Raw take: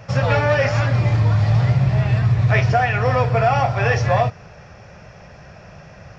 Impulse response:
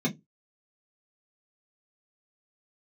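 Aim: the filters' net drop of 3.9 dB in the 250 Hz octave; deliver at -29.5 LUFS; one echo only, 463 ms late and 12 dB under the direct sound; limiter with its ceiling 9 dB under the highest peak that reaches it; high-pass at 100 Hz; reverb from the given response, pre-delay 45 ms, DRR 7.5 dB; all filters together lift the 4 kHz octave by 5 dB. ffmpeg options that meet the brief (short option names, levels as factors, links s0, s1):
-filter_complex "[0:a]highpass=100,equalizer=f=250:t=o:g=-7.5,equalizer=f=4000:t=o:g=7,alimiter=limit=0.2:level=0:latency=1,aecho=1:1:463:0.251,asplit=2[s0][s1];[1:a]atrim=start_sample=2205,adelay=45[s2];[s1][s2]afir=irnorm=-1:irlink=0,volume=0.168[s3];[s0][s3]amix=inputs=2:normalize=0,volume=0.355"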